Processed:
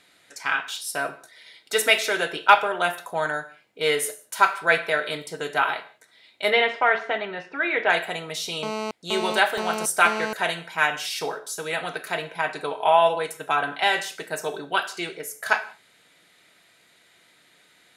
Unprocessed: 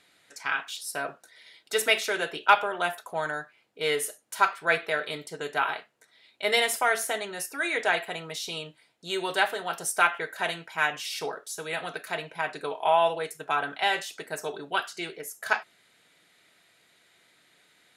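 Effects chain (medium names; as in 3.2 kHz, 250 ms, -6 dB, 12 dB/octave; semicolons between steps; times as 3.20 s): 6.50–7.90 s: low-pass 3.1 kHz 24 dB/octave; gated-style reverb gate 210 ms falling, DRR 11 dB; 8.63–10.33 s: mobile phone buzz -33 dBFS; trim +4 dB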